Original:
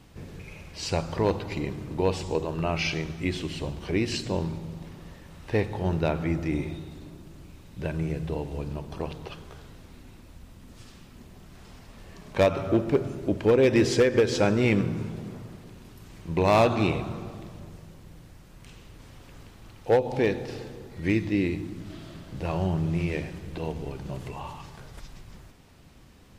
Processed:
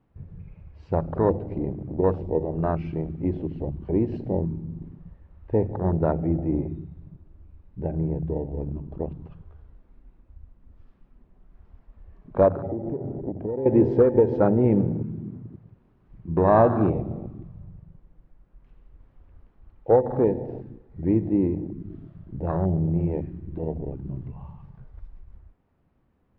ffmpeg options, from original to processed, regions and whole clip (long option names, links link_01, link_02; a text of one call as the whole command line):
ffmpeg -i in.wav -filter_complex "[0:a]asettb=1/sr,asplit=3[link_01][link_02][link_03];[link_01]atrim=end=12.484[link_04];[link_02]atrim=start=12.48:end=13.66,asetpts=PTS-STARTPTS,afade=type=in:duration=0.004:curve=qsin,afade=type=out:start_time=1.176:duration=0.004:curve=qsin,lowpass=9000,aemphasis=mode=reproduction:type=75kf,acompressor=threshold=-28dB:ratio=16:attack=3.2:release=140:knee=1:detection=peak[link_05];[link_03]atrim=start=13.656[link_06];[link_04][link_05]acrossfade=duration=0.004:curve1=hsin:curve2=qsin[link_07];[link_07][link_06]acrossfade=duration=0.004:curve1=qsin:curve2=hsin,lowpass=1400,bandreject=frequency=50:width_type=h:width=6,bandreject=frequency=100:width_type=h:width=6,bandreject=frequency=150:width_type=h:width=6,afwtdn=0.0355,volume=3.5dB" out.wav